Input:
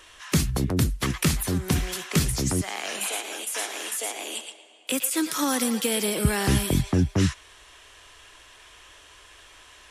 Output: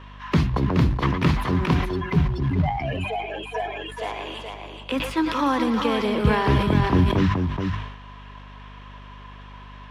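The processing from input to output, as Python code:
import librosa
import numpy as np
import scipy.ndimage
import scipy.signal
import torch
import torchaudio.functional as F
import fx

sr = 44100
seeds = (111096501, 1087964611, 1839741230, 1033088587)

y = fx.spec_expand(x, sr, power=3.5, at=(1.84, 3.96), fade=0.02)
y = scipy.signal.sosfilt(scipy.signal.butter(2, 49.0, 'highpass', fs=sr, output='sos'), y)
y = fx.hum_notches(y, sr, base_hz=50, count=7)
y = y + 10.0 ** (-6.0 / 20.0) * np.pad(y, (int(424 * sr / 1000.0), 0))[:len(y)]
y = fx.quant_float(y, sr, bits=2)
y = fx.air_absorb(y, sr, metres=310.0)
y = fx.add_hum(y, sr, base_hz=50, snr_db=19)
y = fx.peak_eq(y, sr, hz=1000.0, db=11.0, octaves=0.3)
y = fx.sustainer(y, sr, db_per_s=67.0)
y = y * librosa.db_to_amplitude(3.5)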